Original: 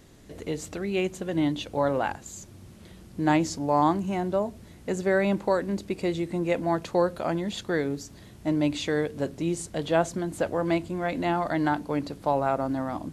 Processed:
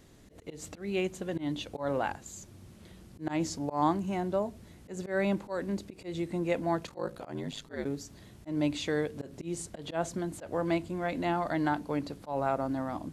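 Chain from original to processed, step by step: 6.86–7.84 s: ring modulator 20 Hz -> 78 Hz; slow attack 139 ms; trim -4 dB

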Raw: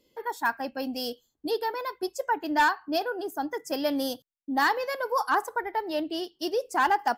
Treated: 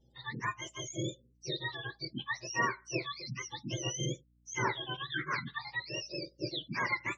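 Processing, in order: spectrum inverted on a logarithmic axis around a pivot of 1.3 kHz; spectral gate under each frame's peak -25 dB strong; hum 60 Hz, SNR 31 dB; trim -5.5 dB

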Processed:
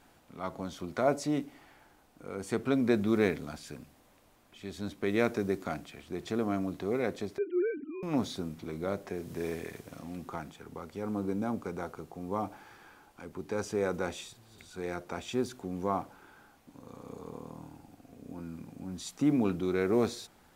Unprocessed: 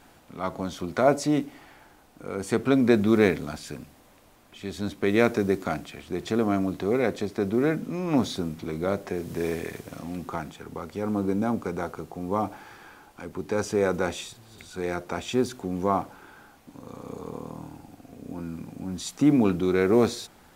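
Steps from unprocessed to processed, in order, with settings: 7.38–8.03 s: formants replaced by sine waves; trim -7 dB

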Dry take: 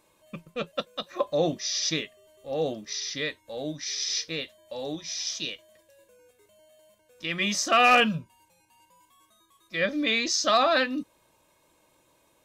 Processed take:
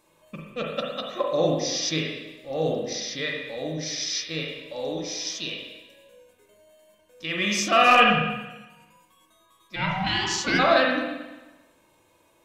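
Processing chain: 9.75–10.58 s: ring modulator 350 Hz -> 980 Hz; spring tank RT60 1.1 s, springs 38/44/56 ms, chirp 70 ms, DRR -1 dB

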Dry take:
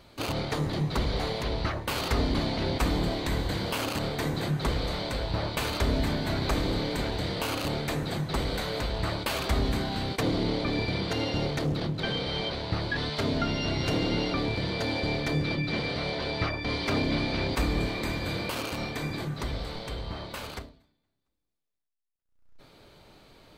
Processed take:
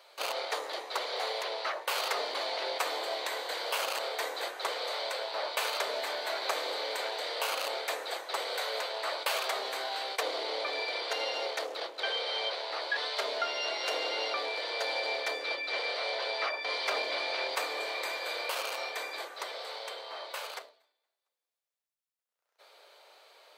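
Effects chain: steep high-pass 480 Hz 36 dB/octave

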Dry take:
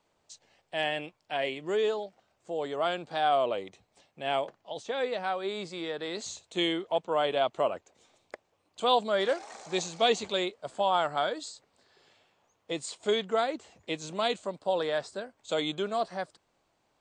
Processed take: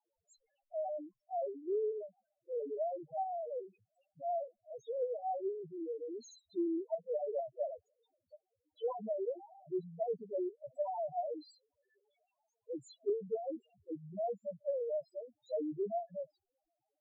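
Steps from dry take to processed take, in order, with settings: 14.18–15.05 s: dynamic bell 300 Hz, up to -4 dB, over -40 dBFS, Q 1.1; loudest bins only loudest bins 1; low-pass that closes with the level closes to 380 Hz, closed at -30.5 dBFS; trim +1.5 dB

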